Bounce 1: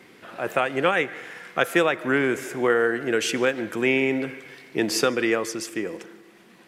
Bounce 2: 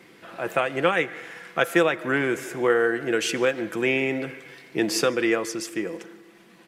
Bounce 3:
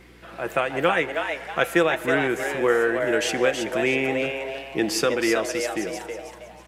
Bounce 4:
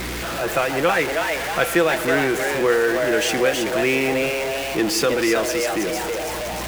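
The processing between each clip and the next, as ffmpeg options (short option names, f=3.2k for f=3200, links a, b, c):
-af "aecho=1:1:6:0.31,volume=-1dB"
-filter_complex "[0:a]asplit=5[a][b][c][d][e];[b]adelay=321,afreqshift=140,volume=-6dB[f];[c]adelay=642,afreqshift=280,volume=-15.4dB[g];[d]adelay=963,afreqshift=420,volume=-24.7dB[h];[e]adelay=1284,afreqshift=560,volume=-34.1dB[i];[a][f][g][h][i]amix=inputs=5:normalize=0,aeval=exprs='val(0)+0.00251*(sin(2*PI*60*n/s)+sin(2*PI*2*60*n/s)/2+sin(2*PI*3*60*n/s)/3+sin(2*PI*4*60*n/s)/4+sin(2*PI*5*60*n/s)/5)':c=same"
-af "aeval=exprs='val(0)+0.5*0.075*sgn(val(0))':c=same"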